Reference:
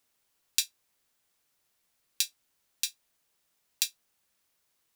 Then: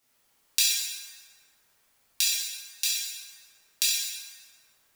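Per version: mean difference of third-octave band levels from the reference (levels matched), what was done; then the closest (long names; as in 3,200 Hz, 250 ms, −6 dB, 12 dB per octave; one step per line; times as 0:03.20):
5.5 dB: dense smooth reverb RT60 2.1 s, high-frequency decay 0.55×, DRR −9 dB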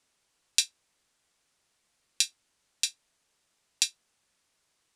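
2.0 dB: low-pass filter 9,800 Hz 24 dB per octave
level +3.5 dB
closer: second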